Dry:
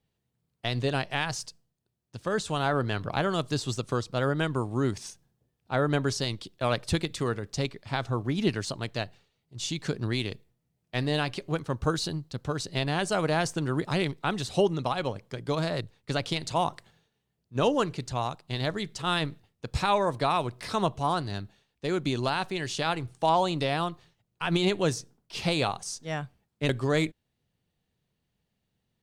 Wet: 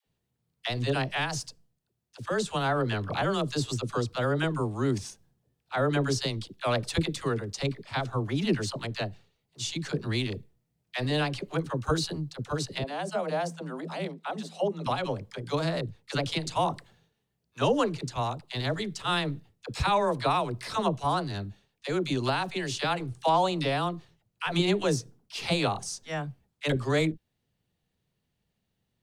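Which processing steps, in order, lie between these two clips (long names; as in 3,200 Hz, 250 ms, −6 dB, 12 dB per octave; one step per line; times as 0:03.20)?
0:12.78–0:14.81: Chebyshev high-pass with heavy ripple 160 Hz, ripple 9 dB
all-pass dispersion lows, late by 61 ms, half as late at 530 Hz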